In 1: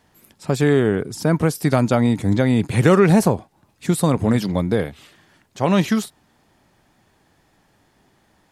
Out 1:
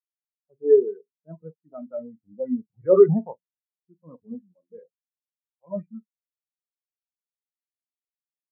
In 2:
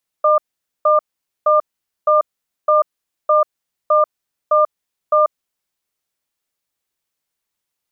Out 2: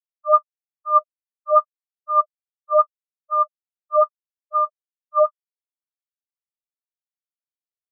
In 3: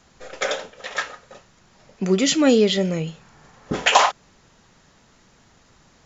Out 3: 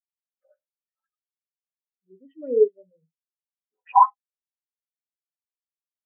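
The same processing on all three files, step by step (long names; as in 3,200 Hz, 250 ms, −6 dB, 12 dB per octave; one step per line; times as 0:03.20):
transient designer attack −6 dB, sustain 0 dB
low-shelf EQ 310 Hz −9.5 dB
hum removal 88.81 Hz, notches 3
on a send: ambience of single reflections 12 ms −17.5 dB, 44 ms −7.5 dB
on the sum: auto-filter low-pass sine 5.7 Hz 810–2,600 Hz
high-pass filter 50 Hz 6 dB per octave
high-shelf EQ 6,500 Hz −9 dB
every bin expanded away from the loudest bin 4 to 1
level −1.5 dB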